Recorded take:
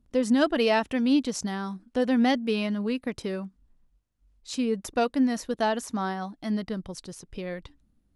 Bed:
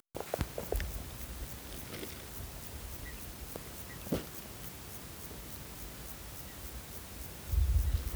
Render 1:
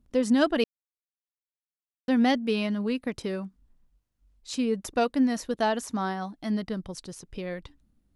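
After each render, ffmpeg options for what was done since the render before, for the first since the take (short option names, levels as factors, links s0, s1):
-filter_complex "[0:a]asplit=3[s0][s1][s2];[s0]atrim=end=0.64,asetpts=PTS-STARTPTS,afade=t=out:st=0.636:d=0.004:c=hsin[s3];[s1]atrim=start=0.64:end=2.08,asetpts=PTS-STARTPTS,volume=0[s4];[s2]atrim=start=2.08,asetpts=PTS-STARTPTS,afade=t=in:d=0.004:c=hsin[s5];[s3][s4][s5]concat=n=3:v=0:a=1"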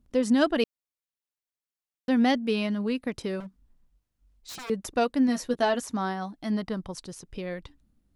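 -filter_complex "[0:a]asettb=1/sr,asplit=3[s0][s1][s2];[s0]atrim=end=3.404[s3];[s1]atrim=start=3.4:end=4.7,asetpts=PTS-STARTPTS,afade=t=in:d=0.004:c=qsin,afade=t=out:st=1.296:d=0.004:c=qsin,aeval=exprs='0.0178*(abs(mod(val(0)/0.0178+3,4)-2)-1)':c=same[s4];[s2]atrim=start=4.696[s5];[s3][s4]acrossfade=d=0.004:c1=hsin:c2=qsin[s6];[s6][s5]acrossfade=d=0.004:c1=qsin:c2=hsin,asettb=1/sr,asplit=3[s7][s8][s9];[s7]atrim=end=5.274[s10];[s8]atrim=start=5.27:end=5.8,asetpts=PTS-STARTPTS,afade=t=in:d=0.004:c=qsin,afade=t=out:st=0.526:d=0.004:c=qsin,asplit=2[s11][s12];[s12]adelay=12,volume=0.531[s13];[s11][s13]amix=inputs=2:normalize=0,atrim=end_sample=23373[s14];[s9]atrim=start=5.796[s15];[s10][s14]acrossfade=d=0.004:c1=hsin:c2=qsin[s16];[s16][s15]acrossfade=d=0.004:c1=qsin:c2=hsin,asettb=1/sr,asplit=3[s17][s18][s19];[s17]atrim=end=6.524[s20];[s18]atrim=start=6.52:end=7.02,asetpts=PTS-STARTPTS,afade=t=in:d=0.004:c=qsin,afade=t=out:st=0.496:d=0.004:c=qsin,equalizer=f=980:w=1.5:g=6[s21];[s19]atrim=start=7.016[s22];[s20][s21]acrossfade=d=0.004:c1=hsin:c2=qsin[s23];[s23][s22]acrossfade=d=0.004:c1=qsin:c2=hsin"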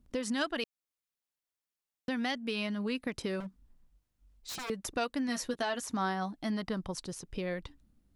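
-filter_complex "[0:a]acrossover=split=970[s0][s1];[s0]acompressor=threshold=0.0282:ratio=6[s2];[s2][s1]amix=inputs=2:normalize=0,alimiter=limit=0.0794:level=0:latency=1:release=330"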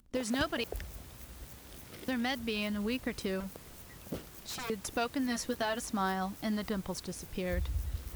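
-filter_complex "[1:a]volume=0.531[s0];[0:a][s0]amix=inputs=2:normalize=0"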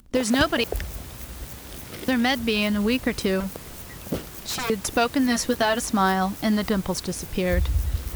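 -af "volume=3.76"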